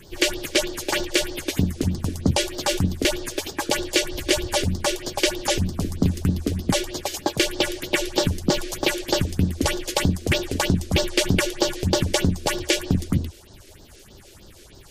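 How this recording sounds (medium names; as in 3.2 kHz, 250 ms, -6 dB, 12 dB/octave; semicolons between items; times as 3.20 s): a quantiser's noise floor 8-bit, dither none; phasing stages 4, 3.2 Hz, lowest notch 140–2400 Hz; MP3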